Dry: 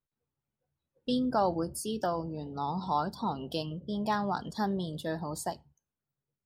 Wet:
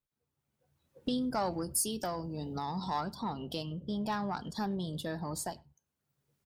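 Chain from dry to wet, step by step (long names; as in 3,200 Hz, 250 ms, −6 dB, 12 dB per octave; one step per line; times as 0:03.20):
one-sided soft clipper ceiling −17.5 dBFS
camcorder AGC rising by 16 dB per second
0:01.18–0:03.01: high-shelf EQ 5,400 Hz +11.5 dB
far-end echo of a speakerphone 100 ms, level −26 dB
dynamic equaliser 560 Hz, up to −3 dB, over −45 dBFS, Q 0.82
level −2 dB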